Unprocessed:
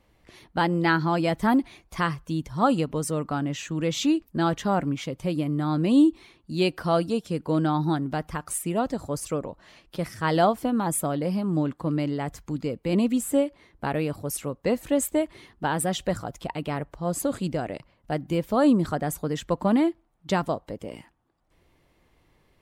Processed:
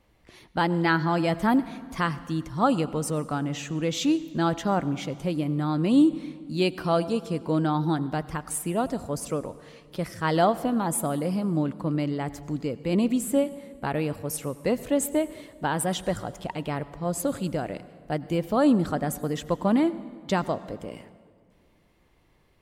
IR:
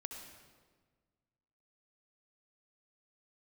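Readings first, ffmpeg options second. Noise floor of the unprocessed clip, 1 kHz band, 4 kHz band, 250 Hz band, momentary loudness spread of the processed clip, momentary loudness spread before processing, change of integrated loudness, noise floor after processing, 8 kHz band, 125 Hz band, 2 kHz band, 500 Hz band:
−65 dBFS, −0.5 dB, −0.5 dB, −0.5 dB, 10 LU, 10 LU, −0.5 dB, −62 dBFS, −0.5 dB, −0.5 dB, −0.5 dB, −0.5 dB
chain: -filter_complex "[0:a]asplit=2[link_01][link_02];[1:a]atrim=start_sample=2205,asetrate=33075,aresample=44100[link_03];[link_02][link_03]afir=irnorm=-1:irlink=0,volume=-9.5dB[link_04];[link_01][link_04]amix=inputs=2:normalize=0,volume=-2.5dB"

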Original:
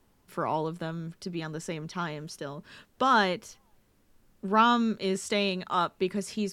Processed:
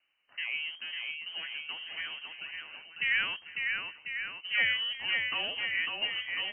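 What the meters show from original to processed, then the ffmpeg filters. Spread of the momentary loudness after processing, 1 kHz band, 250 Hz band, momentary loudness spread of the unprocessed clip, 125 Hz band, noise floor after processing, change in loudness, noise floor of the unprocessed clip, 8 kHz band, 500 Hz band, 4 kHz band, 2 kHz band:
12 LU, −20.0 dB, −28.0 dB, 15 LU, below −20 dB, −60 dBFS, −3.0 dB, −66 dBFS, below −35 dB, −20.5 dB, +5.0 dB, +5.5 dB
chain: -filter_complex "[0:a]acrossover=split=200[link_01][link_02];[link_01]acrusher=bits=4:dc=4:mix=0:aa=0.000001[link_03];[link_02]aecho=1:1:550|1045|1490|1891|2252:0.631|0.398|0.251|0.158|0.1[link_04];[link_03][link_04]amix=inputs=2:normalize=0,lowpass=frequency=2700:width_type=q:width=0.5098,lowpass=frequency=2700:width_type=q:width=0.6013,lowpass=frequency=2700:width_type=q:width=0.9,lowpass=frequency=2700:width_type=q:width=2.563,afreqshift=-3200,volume=-6dB"

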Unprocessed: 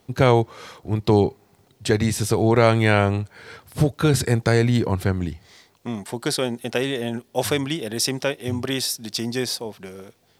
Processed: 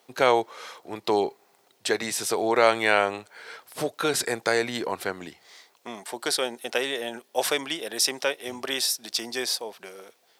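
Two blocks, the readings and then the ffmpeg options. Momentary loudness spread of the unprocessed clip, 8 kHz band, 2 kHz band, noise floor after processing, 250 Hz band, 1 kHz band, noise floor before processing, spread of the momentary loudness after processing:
14 LU, 0.0 dB, 0.0 dB, −64 dBFS, −11.0 dB, −0.5 dB, −60 dBFS, 18 LU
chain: -af "highpass=510"

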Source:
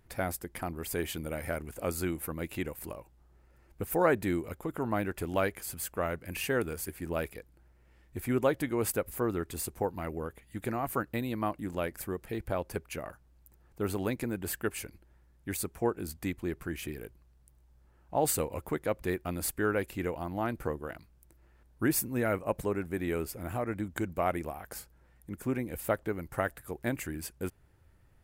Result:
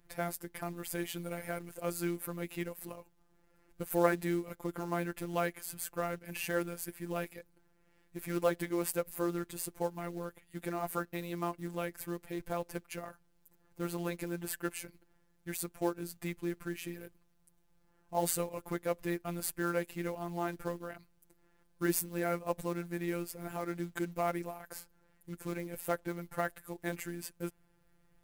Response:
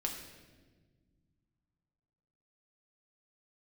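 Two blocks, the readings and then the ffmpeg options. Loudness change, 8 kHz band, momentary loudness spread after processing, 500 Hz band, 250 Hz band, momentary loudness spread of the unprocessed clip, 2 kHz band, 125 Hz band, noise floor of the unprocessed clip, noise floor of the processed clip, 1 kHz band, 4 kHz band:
−3.5 dB, −3.0 dB, 11 LU, −3.5 dB, −3.0 dB, 11 LU, −3.5 dB, −4.5 dB, −63 dBFS, −70 dBFS, −3.0 dB, −3.0 dB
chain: -af "acrusher=bits=5:mode=log:mix=0:aa=0.000001,afftfilt=real='hypot(re,im)*cos(PI*b)':imag='0':win_size=1024:overlap=0.75"

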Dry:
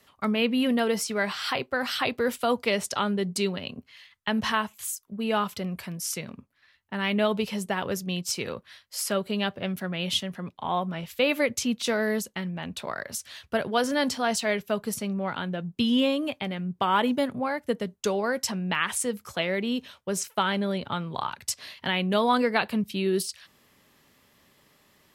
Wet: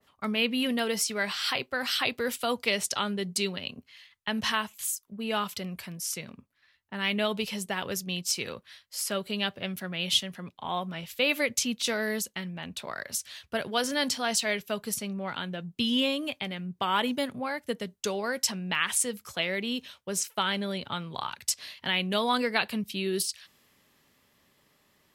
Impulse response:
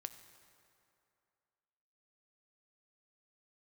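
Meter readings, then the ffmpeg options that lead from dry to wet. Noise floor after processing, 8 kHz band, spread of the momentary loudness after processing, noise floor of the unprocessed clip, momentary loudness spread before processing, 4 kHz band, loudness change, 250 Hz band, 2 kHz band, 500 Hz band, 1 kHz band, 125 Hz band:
−68 dBFS, +2.0 dB, 9 LU, −64 dBFS, 10 LU, +2.0 dB, −2.0 dB, −5.0 dB, −0.5 dB, −5.0 dB, −4.0 dB, −5.0 dB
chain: -af "adynamicequalizer=threshold=0.00891:dfrequency=1800:dqfactor=0.7:tfrequency=1800:tqfactor=0.7:attack=5:release=100:ratio=0.375:range=4:mode=boostabove:tftype=highshelf,volume=-5dB"

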